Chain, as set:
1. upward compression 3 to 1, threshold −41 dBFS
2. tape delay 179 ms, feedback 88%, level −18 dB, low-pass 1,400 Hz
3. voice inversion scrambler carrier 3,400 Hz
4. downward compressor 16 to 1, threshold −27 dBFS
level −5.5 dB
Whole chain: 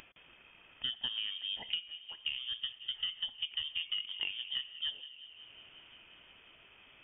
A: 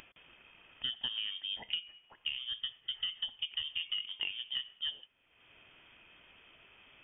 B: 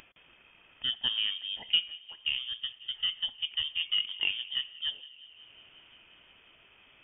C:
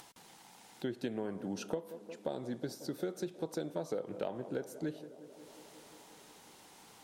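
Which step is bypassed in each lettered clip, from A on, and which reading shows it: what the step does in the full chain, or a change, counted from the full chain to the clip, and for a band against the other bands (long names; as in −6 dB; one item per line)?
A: 2, change in momentary loudness spread −15 LU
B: 4, average gain reduction 2.5 dB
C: 3, change in momentary loudness spread −1 LU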